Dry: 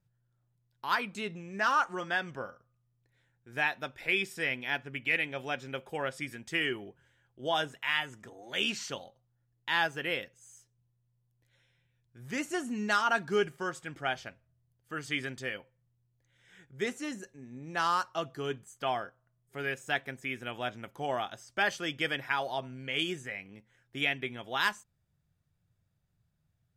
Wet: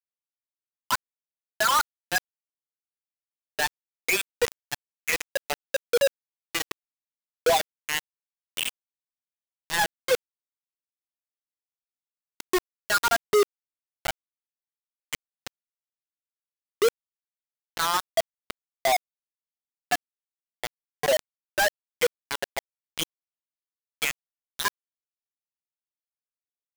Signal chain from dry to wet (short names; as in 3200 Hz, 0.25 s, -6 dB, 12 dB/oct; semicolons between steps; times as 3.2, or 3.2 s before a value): per-bin expansion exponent 3; compressor 1.5:1, threshold -55 dBFS, peak gain reduction 10.5 dB; resonant high-pass 460 Hz, resonance Q 4.9; companded quantiser 2-bit; gain +8 dB